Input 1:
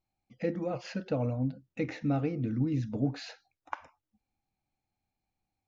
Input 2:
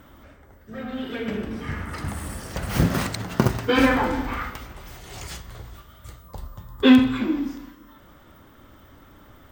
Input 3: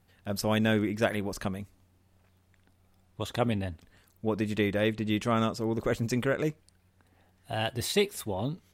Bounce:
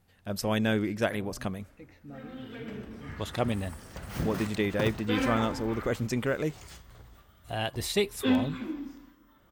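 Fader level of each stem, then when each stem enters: -17.5 dB, -12.0 dB, -1.0 dB; 0.00 s, 1.40 s, 0.00 s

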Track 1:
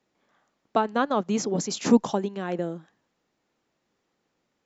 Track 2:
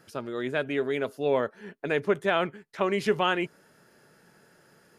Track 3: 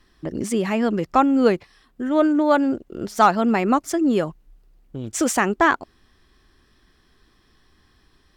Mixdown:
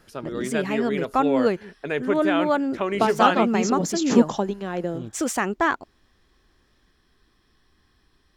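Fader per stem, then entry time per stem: +1.5 dB, +0.5 dB, -4.5 dB; 2.25 s, 0.00 s, 0.00 s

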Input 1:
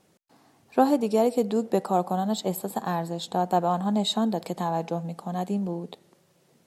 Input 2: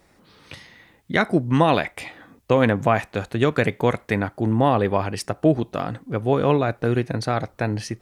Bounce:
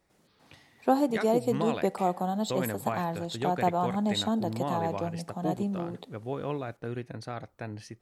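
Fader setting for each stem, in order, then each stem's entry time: -3.5 dB, -14.5 dB; 0.10 s, 0.00 s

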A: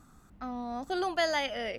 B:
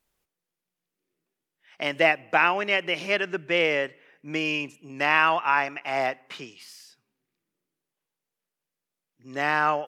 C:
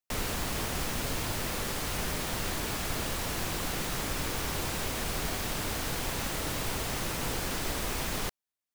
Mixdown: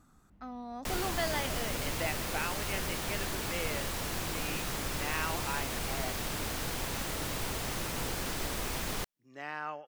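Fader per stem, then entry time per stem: -5.5 dB, -16.0 dB, -2.5 dB; 0.00 s, 0.00 s, 0.75 s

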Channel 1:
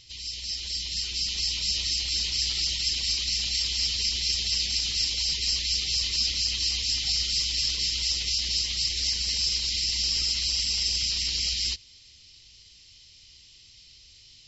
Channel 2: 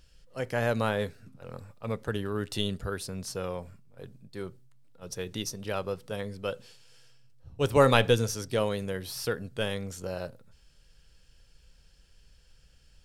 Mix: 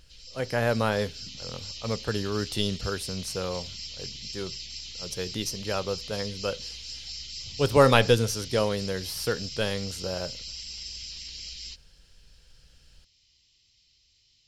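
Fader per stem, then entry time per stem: -12.5 dB, +2.5 dB; 0.00 s, 0.00 s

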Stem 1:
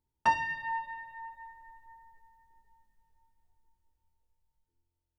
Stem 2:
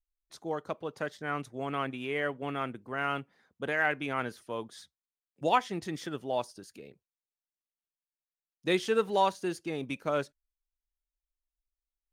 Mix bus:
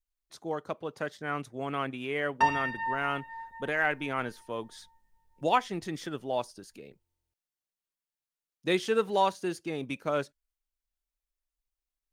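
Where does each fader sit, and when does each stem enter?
+1.5 dB, +0.5 dB; 2.15 s, 0.00 s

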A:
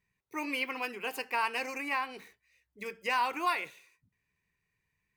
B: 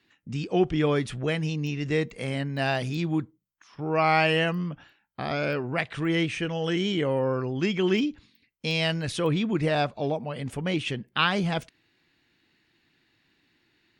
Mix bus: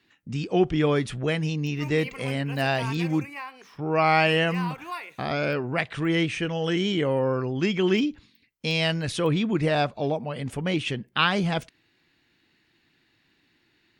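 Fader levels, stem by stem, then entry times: -5.0 dB, +1.5 dB; 1.45 s, 0.00 s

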